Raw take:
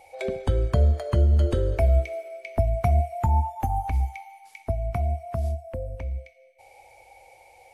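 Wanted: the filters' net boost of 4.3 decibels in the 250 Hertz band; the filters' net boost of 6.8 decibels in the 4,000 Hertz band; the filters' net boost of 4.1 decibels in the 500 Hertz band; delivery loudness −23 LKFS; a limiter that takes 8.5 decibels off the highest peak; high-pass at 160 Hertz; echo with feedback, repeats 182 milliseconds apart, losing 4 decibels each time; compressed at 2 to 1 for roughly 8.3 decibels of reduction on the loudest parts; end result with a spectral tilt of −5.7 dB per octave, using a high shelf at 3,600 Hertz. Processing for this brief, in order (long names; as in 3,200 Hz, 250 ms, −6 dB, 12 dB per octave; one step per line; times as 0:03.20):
high-pass filter 160 Hz
parametric band 250 Hz +6 dB
parametric band 500 Hz +4 dB
high-shelf EQ 3,600 Hz +9 dB
parametric band 4,000 Hz +3 dB
downward compressor 2 to 1, threshold −35 dBFS
brickwall limiter −26.5 dBFS
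repeating echo 182 ms, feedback 63%, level −4 dB
level +10.5 dB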